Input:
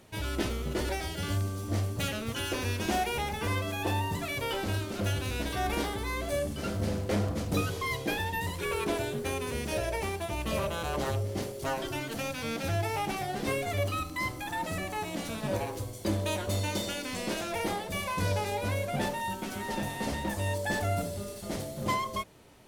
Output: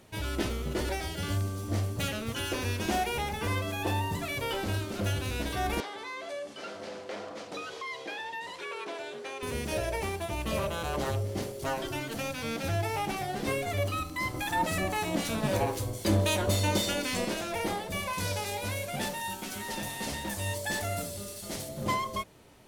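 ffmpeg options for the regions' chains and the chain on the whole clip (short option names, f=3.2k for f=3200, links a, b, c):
-filter_complex "[0:a]asettb=1/sr,asplit=3[a][b][c];[a]atrim=end=5.804[d];[b]atrim=start=5.8:end=9.43,asetpts=PTS-STARTPTS,afade=t=in:d=0.004:c=qsin,afade=t=out:st=3.626:d=0.004:c=qsin,highpass=490,lowpass=5.6k,acompressor=threshold=-37dB:ratio=2:attack=3.2:release=140:knee=1:detection=peak[e];[c]atrim=start=9.426[f];[d][e]acrossfade=d=0.004:c1=hsin:c2=qsin[g];[g][f]acrossfade=d=0.004:c1=qsin:c2=hsin,asettb=1/sr,asplit=3[h][i][j];[h]atrim=end=14.344[k];[i]atrim=start=14.34:end=17.25,asetpts=PTS-STARTPTS,afade=t=in:d=0.004:c=qsin,afade=t=out:st=2.906:d=0.004:c=qsin,acontrast=76,acrossover=split=1500[l][m];[l]aeval=exprs='val(0)*(1-0.5/2+0.5/2*cos(2*PI*3.8*n/s))':c=same[n];[m]aeval=exprs='val(0)*(1-0.5/2-0.5/2*cos(2*PI*3.8*n/s))':c=same[o];[n][o]amix=inputs=2:normalize=0[p];[j]atrim=start=17.246[q];[k][p]acrossfade=d=0.004:c1=hsin:c2=qsin[r];[r][q]acrossfade=d=0.004:c1=qsin:c2=hsin,asettb=1/sr,asplit=3[s][t][u];[s]atrim=end=18.134[v];[t]atrim=start=18.13:end=21.69,asetpts=PTS-STARTPTS,afade=t=in:d=0.004:c=qsin,afade=t=out:st=3.556:d=0.004:c=qsin,highshelf=f=2.2k:g=10,flanger=delay=4.2:depth=7:regen=87:speed=1.1:shape=triangular[w];[u]atrim=start=21.686[x];[v][w]acrossfade=d=0.004:c1=hsin:c2=qsin[y];[y][x]acrossfade=d=0.004:c1=qsin:c2=hsin"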